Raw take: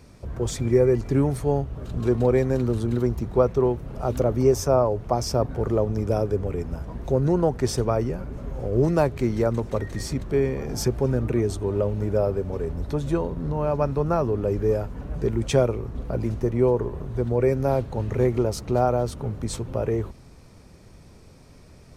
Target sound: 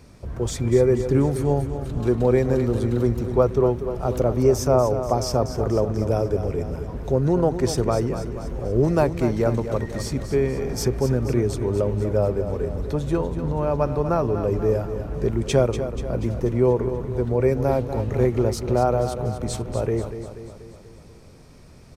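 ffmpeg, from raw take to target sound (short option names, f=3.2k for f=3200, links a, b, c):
-af "aecho=1:1:242|484|726|968|1210|1452:0.316|0.174|0.0957|0.0526|0.0289|0.0159,volume=1dB"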